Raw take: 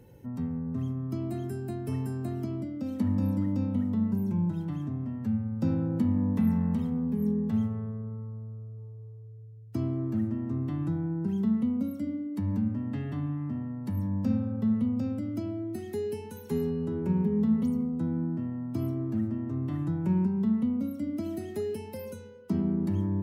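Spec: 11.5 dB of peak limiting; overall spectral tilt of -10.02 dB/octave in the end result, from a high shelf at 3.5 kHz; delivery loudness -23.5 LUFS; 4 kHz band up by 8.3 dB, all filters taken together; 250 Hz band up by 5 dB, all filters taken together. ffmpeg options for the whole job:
-af "equalizer=f=250:t=o:g=6,highshelf=f=3500:g=7,equalizer=f=4000:t=o:g=6,volume=2.11,alimiter=limit=0.168:level=0:latency=1"

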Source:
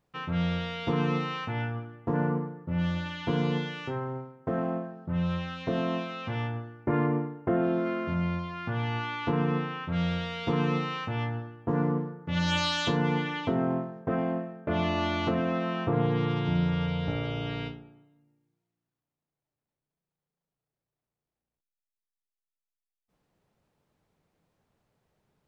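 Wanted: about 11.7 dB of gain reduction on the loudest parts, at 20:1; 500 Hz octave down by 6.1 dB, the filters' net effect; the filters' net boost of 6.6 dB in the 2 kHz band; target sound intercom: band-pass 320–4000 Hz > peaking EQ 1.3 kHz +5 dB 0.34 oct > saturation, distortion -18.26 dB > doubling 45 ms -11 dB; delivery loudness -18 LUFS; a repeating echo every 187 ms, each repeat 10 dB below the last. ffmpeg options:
-filter_complex "[0:a]equalizer=f=500:t=o:g=-7.5,equalizer=f=2000:t=o:g=8,acompressor=threshold=0.02:ratio=20,highpass=320,lowpass=4000,equalizer=f=1300:t=o:w=0.34:g=5,aecho=1:1:187|374|561|748:0.316|0.101|0.0324|0.0104,asoftclip=threshold=0.0282,asplit=2[s0][s1];[s1]adelay=45,volume=0.282[s2];[s0][s2]amix=inputs=2:normalize=0,volume=13.3"

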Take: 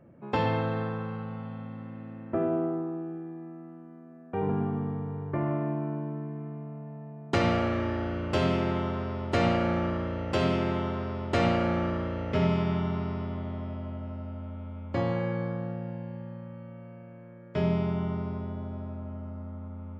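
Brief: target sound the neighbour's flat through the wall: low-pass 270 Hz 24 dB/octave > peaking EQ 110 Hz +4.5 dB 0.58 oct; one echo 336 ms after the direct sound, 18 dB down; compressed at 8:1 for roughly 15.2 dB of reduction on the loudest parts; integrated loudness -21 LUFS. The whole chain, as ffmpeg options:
-af "acompressor=threshold=0.0141:ratio=8,lowpass=f=270:w=0.5412,lowpass=f=270:w=1.3066,equalizer=f=110:t=o:w=0.58:g=4.5,aecho=1:1:336:0.126,volume=11.2"

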